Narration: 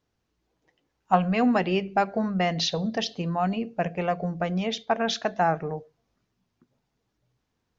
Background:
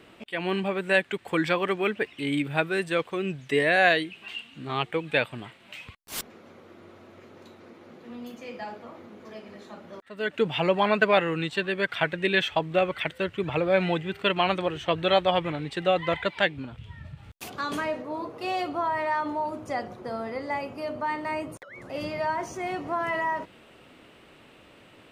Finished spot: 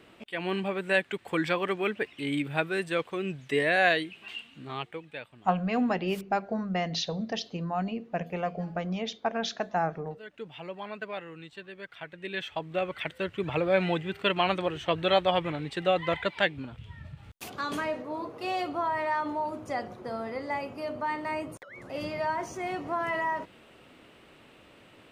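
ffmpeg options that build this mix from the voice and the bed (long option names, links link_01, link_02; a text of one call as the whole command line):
ffmpeg -i stem1.wav -i stem2.wav -filter_complex "[0:a]adelay=4350,volume=-5dB[link_01];[1:a]volume=11.5dB,afade=type=out:start_time=4.4:duration=0.73:silence=0.211349,afade=type=in:start_time=12.08:duration=1.44:silence=0.188365[link_02];[link_01][link_02]amix=inputs=2:normalize=0" out.wav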